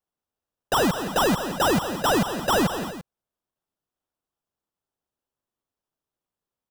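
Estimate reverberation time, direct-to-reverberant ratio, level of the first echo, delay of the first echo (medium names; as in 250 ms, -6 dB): no reverb, no reverb, -10.5 dB, 170 ms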